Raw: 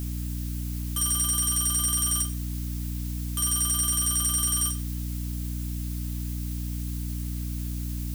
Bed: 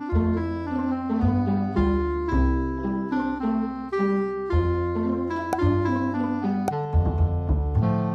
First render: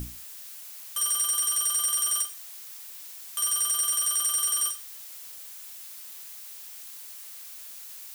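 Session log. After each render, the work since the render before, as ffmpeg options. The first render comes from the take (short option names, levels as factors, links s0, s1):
-af "bandreject=f=60:t=h:w=6,bandreject=f=120:t=h:w=6,bandreject=f=180:t=h:w=6,bandreject=f=240:t=h:w=6,bandreject=f=300:t=h:w=6,bandreject=f=360:t=h:w=6"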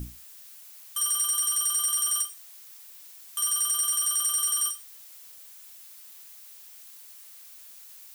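-af "afftdn=nr=6:nf=-43"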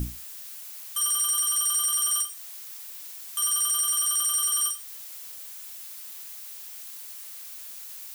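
-af "acontrast=80,alimiter=limit=0.141:level=0:latency=1:release=230"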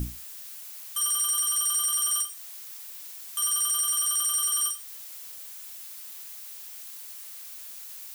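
-af "volume=0.891"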